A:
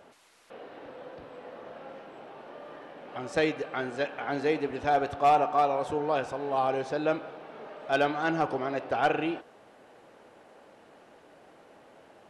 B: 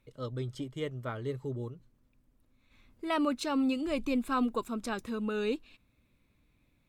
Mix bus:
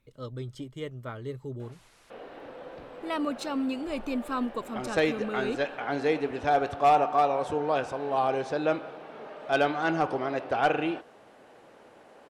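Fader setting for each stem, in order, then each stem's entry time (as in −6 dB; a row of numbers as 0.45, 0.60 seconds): +1.0, −1.0 decibels; 1.60, 0.00 seconds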